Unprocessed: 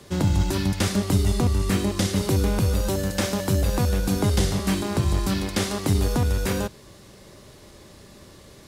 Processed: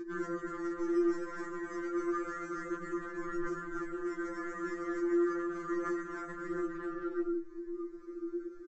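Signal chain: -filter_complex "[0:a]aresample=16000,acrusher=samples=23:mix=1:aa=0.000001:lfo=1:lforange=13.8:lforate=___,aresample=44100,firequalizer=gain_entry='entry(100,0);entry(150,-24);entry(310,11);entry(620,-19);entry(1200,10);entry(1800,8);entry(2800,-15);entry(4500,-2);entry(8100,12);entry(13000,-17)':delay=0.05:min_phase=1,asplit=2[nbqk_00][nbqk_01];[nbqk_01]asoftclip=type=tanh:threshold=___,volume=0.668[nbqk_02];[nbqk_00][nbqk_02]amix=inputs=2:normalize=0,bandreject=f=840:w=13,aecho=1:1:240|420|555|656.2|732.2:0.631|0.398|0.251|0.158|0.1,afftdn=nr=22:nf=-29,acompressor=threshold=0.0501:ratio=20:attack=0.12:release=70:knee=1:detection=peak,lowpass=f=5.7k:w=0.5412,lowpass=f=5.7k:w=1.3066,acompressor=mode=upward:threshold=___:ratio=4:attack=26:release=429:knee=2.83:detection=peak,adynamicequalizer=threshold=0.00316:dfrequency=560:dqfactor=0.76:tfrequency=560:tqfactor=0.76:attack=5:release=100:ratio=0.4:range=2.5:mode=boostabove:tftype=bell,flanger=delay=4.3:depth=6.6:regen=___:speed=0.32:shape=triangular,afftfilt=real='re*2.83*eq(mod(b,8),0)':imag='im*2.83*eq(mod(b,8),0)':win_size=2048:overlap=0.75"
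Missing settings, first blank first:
0.33, 0.15, 0.02, 39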